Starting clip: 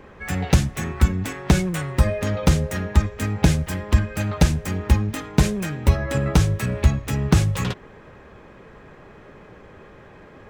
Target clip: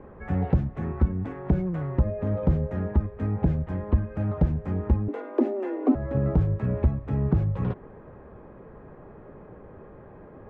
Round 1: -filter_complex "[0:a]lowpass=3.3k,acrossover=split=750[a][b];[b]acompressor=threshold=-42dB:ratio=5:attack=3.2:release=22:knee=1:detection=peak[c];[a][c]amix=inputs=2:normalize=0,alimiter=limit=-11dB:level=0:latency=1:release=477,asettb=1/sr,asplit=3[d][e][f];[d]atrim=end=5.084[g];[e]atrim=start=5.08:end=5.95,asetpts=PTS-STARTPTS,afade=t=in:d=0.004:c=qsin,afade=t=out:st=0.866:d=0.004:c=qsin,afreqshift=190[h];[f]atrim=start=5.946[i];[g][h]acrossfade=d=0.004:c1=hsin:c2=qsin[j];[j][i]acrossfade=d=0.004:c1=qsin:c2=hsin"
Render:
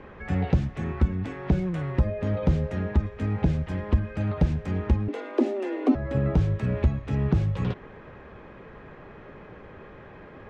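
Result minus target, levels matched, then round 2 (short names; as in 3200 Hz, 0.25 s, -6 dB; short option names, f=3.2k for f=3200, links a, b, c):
4000 Hz band +13.0 dB
-filter_complex "[0:a]lowpass=970,acrossover=split=750[a][b];[b]acompressor=threshold=-42dB:ratio=5:attack=3.2:release=22:knee=1:detection=peak[c];[a][c]amix=inputs=2:normalize=0,alimiter=limit=-11dB:level=0:latency=1:release=477,asettb=1/sr,asplit=3[d][e][f];[d]atrim=end=5.084[g];[e]atrim=start=5.08:end=5.95,asetpts=PTS-STARTPTS,afade=t=in:d=0.004:c=qsin,afade=t=out:st=0.866:d=0.004:c=qsin,afreqshift=190[h];[f]atrim=start=5.946[i];[g][h]acrossfade=d=0.004:c1=hsin:c2=qsin[j];[j][i]acrossfade=d=0.004:c1=qsin:c2=hsin"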